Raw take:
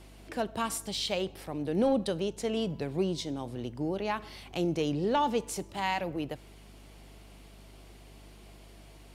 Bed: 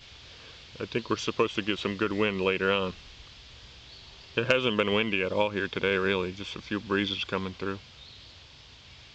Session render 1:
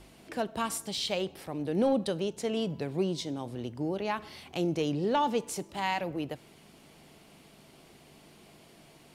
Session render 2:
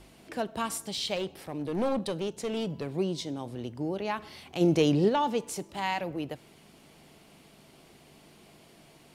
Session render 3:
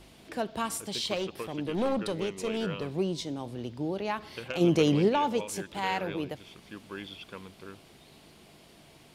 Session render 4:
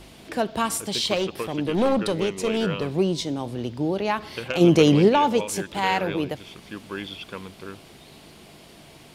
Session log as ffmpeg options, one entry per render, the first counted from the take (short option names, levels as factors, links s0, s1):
-af "bandreject=f=50:t=h:w=4,bandreject=f=100:t=h:w=4"
-filter_complex "[0:a]asettb=1/sr,asplit=3[s0][s1][s2];[s0]atrim=end=1.164[s3];[s1]atrim=start=1.16:end=2.87,asetpts=PTS-STARTPTS,afade=t=in:d=0.004:c=qsin,afade=t=out:st=1.706:d=0.004:c=qsin,aeval=exprs='clip(val(0),-1,0.0447)':c=same[s4];[s2]atrim=start=2.866[s5];[s3][s4]acrossfade=d=0.004:c1=hsin:c2=qsin[s6];[s6][s5]acrossfade=d=0.004:c1=qsin:c2=hsin,asplit=3[s7][s8][s9];[s7]afade=t=out:st=4.6:d=0.02[s10];[s8]acontrast=72,afade=t=in:st=4.6:d=0.02,afade=t=out:st=5.08:d=0.02[s11];[s9]afade=t=in:st=5.08:d=0.02[s12];[s10][s11][s12]amix=inputs=3:normalize=0"
-filter_complex "[1:a]volume=0.211[s0];[0:a][s0]amix=inputs=2:normalize=0"
-af "volume=2.37"